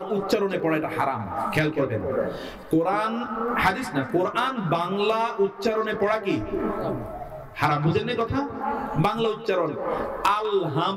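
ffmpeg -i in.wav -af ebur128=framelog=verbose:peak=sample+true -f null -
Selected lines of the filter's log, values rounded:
Integrated loudness:
  I:         -24.9 LUFS
  Threshold: -35.1 LUFS
Loudness range:
  LRA:         1.6 LU
  Threshold: -45.1 LUFS
  LRA low:   -25.9 LUFS
  LRA high:  -24.3 LUFS
Sample peak:
  Peak:       -9.8 dBFS
True peak:
  Peak:       -9.6 dBFS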